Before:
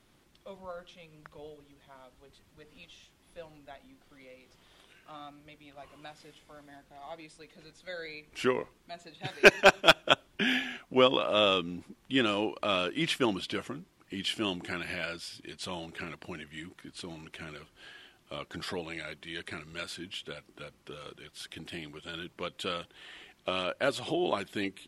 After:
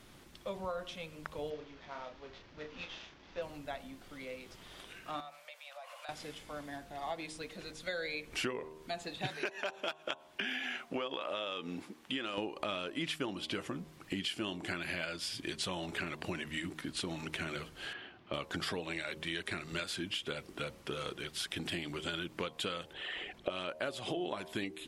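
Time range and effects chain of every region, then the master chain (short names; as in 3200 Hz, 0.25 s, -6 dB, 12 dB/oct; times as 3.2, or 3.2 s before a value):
1.5–3.42 CVSD 32 kbps + tone controls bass -5 dB, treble -10 dB + doubler 33 ms -6 dB
5.2–6.09 steep high-pass 520 Hz 96 dB/oct + compressor 5:1, threshold -53 dBFS
9.32–12.38 HPF 510 Hz 6 dB/oct + high shelf 4900 Hz -5 dB + compressor 2.5:1, threshold -35 dBFS
17.93–18.34 HPF 78 Hz + air absorption 300 m
22.93–23.5 formant sharpening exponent 1.5 + bell 570 Hz +6 dB 1.1 oct
whole clip: de-hum 77.77 Hz, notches 14; compressor 10:1, threshold -42 dBFS; gain +8 dB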